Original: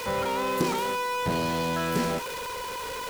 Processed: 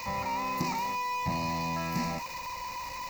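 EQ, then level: static phaser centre 2.2 kHz, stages 8; -1.5 dB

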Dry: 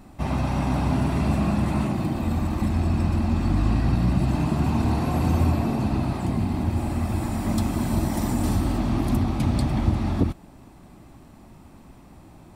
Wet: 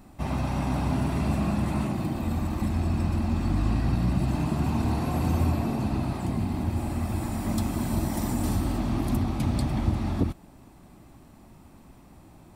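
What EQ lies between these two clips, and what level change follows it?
treble shelf 9.2 kHz +5 dB; -3.5 dB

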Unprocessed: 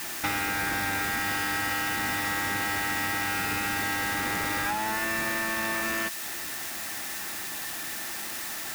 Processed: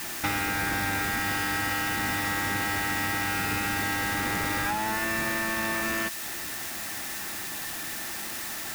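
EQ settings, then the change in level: bass shelf 250 Hz +5 dB; 0.0 dB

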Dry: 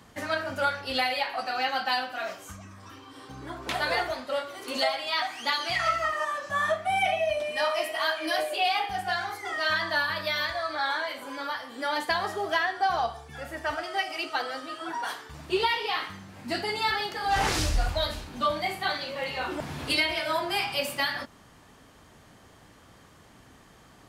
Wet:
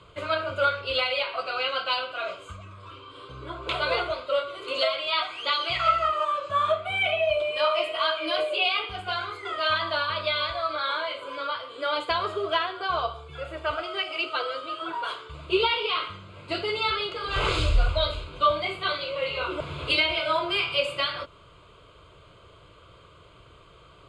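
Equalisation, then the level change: low-pass 6.9 kHz 24 dB/octave; static phaser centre 1.2 kHz, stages 8; +5.5 dB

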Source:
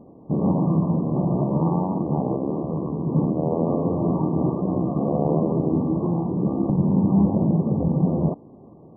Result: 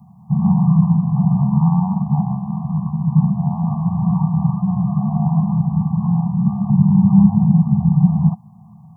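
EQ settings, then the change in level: high-pass 120 Hz 12 dB/octave; Chebyshev band-stop 210–730 Hz, order 5; tone controls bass +9 dB, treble +14 dB; +2.5 dB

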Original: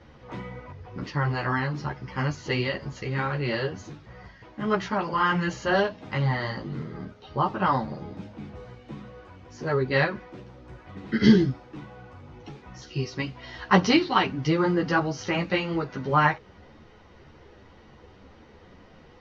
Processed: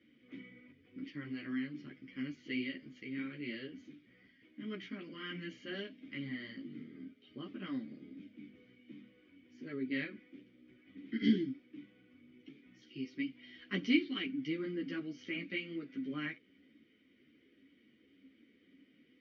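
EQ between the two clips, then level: vowel filter i; bass shelf 130 Hz -8 dB; band-stop 4 kHz, Q 16; 0.0 dB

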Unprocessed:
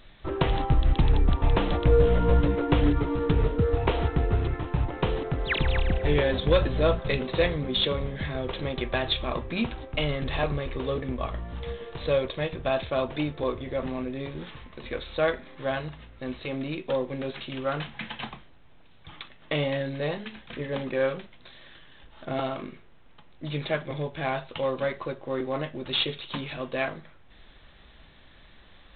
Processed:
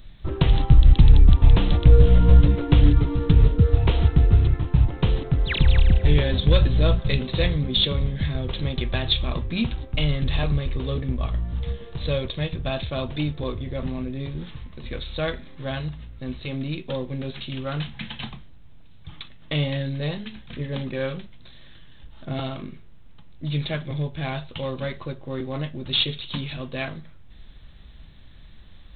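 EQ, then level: tone controls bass +14 dB, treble +12 dB; dynamic bell 3.7 kHz, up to +5 dB, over -41 dBFS, Q 0.72; -4.5 dB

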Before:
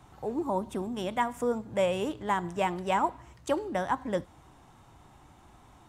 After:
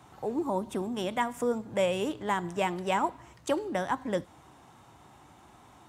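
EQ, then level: high-pass 63 Hz; dynamic bell 910 Hz, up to -4 dB, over -35 dBFS, Q 0.71; bass shelf 120 Hz -7.5 dB; +2.5 dB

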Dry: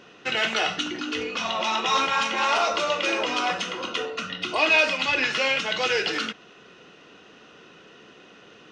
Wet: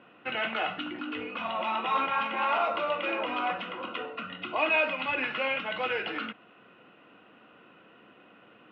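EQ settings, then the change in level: distance through air 120 m; cabinet simulation 110–2700 Hz, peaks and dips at 160 Hz -6 dB, 410 Hz -9 dB, 1.8 kHz -5 dB; -2.5 dB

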